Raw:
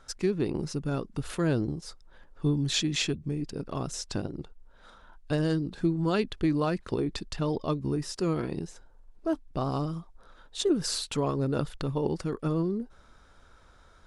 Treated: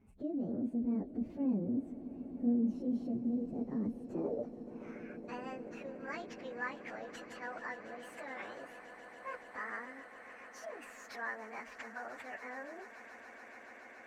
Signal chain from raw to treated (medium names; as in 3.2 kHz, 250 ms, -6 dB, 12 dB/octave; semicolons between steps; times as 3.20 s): frequency-domain pitch shifter +8.5 st; de-esser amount 85%; bass shelf 190 Hz +5.5 dB; in parallel at +3 dB: compressor with a negative ratio -38 dBFS, ratio -1; on the sum: band-pass sweep 230 Hz -> 1.7 kHz, 3.93–5.07 s; echo with a slow build-up 142 ms, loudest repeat 8, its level -18 dB; trim -4 dB